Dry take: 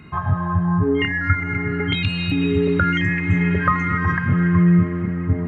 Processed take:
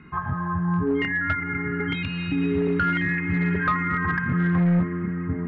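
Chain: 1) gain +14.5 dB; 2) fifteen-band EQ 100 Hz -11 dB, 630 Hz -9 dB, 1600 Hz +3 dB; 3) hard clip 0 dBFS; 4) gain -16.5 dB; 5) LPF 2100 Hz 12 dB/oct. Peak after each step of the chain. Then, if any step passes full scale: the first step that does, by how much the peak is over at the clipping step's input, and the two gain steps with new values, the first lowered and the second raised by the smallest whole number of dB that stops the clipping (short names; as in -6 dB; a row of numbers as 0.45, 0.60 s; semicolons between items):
+10.0, +9.0, 0.0, -16.5, -16.0 dBFS; step 1, 9.0 dB; step 1 +5.5 dB, step 4 -7.5 dB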